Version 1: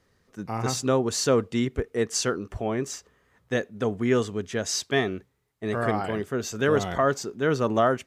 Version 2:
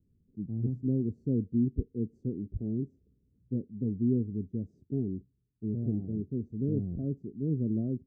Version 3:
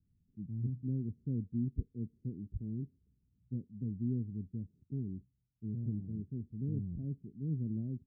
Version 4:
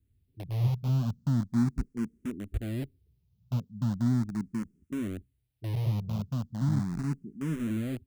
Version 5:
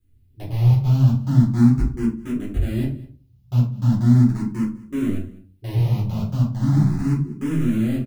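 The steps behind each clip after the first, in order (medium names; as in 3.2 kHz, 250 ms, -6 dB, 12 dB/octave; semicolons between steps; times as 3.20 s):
inverse Chebyshev low-pass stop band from 980 Hz, stop band 60 dB
FFT filter 160 Hz 0 dB, 420 Hz -11 dB, 840 Hz -15 dB; trim -4 dB
in parallel at -8.5 dB: word length cut 6-bit, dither none; on the sum: barber-pole phaser +0.38 Hz; trim +7.5 dB
delay 201 ms -21 dB; simulated room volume 200 m³, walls furnished, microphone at 4 m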